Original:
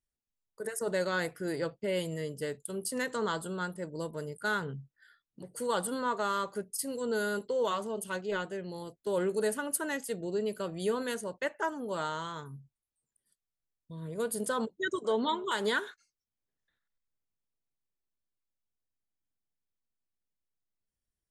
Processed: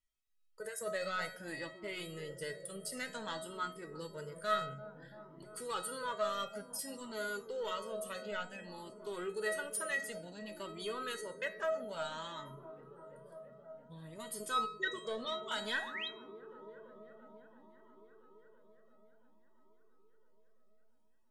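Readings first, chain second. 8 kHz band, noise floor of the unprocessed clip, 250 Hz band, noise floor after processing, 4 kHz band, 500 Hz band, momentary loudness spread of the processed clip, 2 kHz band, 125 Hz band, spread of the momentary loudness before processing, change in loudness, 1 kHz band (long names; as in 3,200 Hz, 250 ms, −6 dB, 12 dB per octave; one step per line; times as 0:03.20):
−5.5 dB, below −85 dBFS, −12.0 dB, −63 dBFS, −2.0 dB, −8.0 dB, 17 LU, −4.0 dB, −10.5 dB, 9 LU, −6.5 dB, −5.0 dB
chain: on a send: delay with a low-pass on its return 337 ms, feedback 78%, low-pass 650 Hz, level −13 dB
on the sum: sound drawn into the spectrogram rise, 0:15.76–0:16.08, 510–4,200 Hz −41 dBFS
in parallel at 0 dB: downward compressor, threshold −42 dBFS, peak gain reduction 15.5 dB
on the sum: soft clipping −19 dBFS, distortion −25 dB
parametric band 2,600 Hz +7 dB 2 octaves
tuned comb filter 640 Hz, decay 0.44 s, mix 90%
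hum removal 92.52 Hz, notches 25
flanger whose copies keep moving one way rising 0.56 Hz
level +11.5 dB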